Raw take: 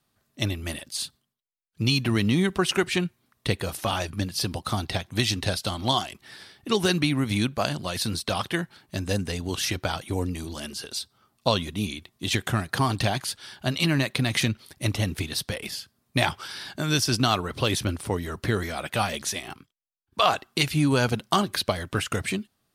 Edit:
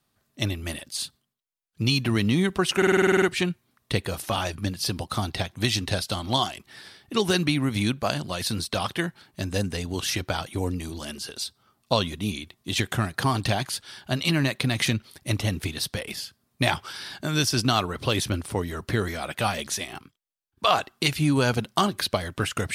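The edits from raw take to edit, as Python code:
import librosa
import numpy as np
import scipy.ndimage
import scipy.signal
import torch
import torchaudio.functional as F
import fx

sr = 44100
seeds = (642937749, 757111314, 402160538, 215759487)

y = fx.edit(x, sr, fx.stutter(start_s=2.77, slice_s=0.05, count=10), tone=tone)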